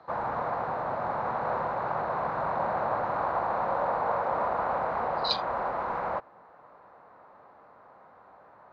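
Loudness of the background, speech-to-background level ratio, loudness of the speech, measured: −30.0 LKFS, −2.5 dB, −32.5 LKFS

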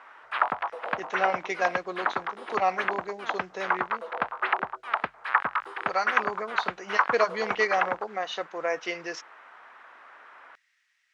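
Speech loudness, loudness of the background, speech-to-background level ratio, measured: −31.0 LKFS, −29.5 LKFS, −1.5 dB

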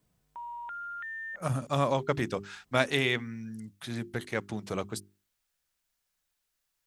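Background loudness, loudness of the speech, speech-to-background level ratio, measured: −39.5 LKFS, −31.5 LKFS, 8.0 dB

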